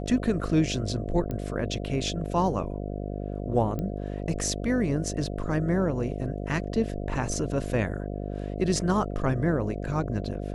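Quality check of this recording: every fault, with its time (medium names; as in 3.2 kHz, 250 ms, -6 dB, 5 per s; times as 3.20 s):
buzz 50 Hz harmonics 14 -33 dBFS
1.31 s: pop -20 dBFS
3.79 s: pop -20 dBFS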